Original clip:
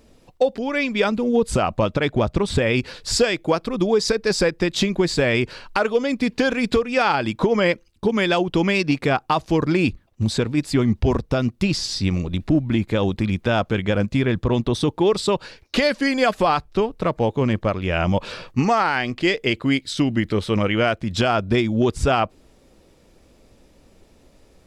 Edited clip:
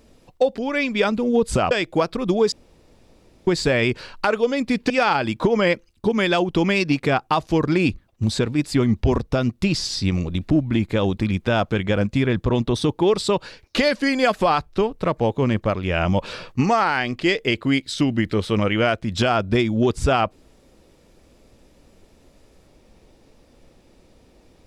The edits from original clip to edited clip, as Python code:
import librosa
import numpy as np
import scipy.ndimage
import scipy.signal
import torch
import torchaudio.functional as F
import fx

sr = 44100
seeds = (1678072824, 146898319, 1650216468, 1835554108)

y = fx.edit(x, sr, fx.cut(start_s=1.71, length_s=1.52),
    fx.room_tone_fill(start_s=4.04, length_s=0.95),
    fx.cut(start_s=6.42, length_s=0.47), tone=tone)